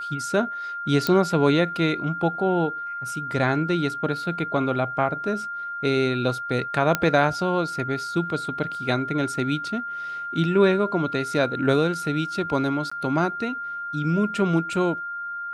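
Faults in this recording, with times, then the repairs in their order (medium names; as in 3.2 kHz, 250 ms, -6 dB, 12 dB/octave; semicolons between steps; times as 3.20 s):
whine 1.4 kHz -29 dBFS
1.07 s: pop -8 dBFS
6.95 s: pop -6 dBFS
12.90–12.91 s: dropout 15 ms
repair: de-click; band-stop 1.4 kHz, Q 30; interpolate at 12.90 s, 15 ms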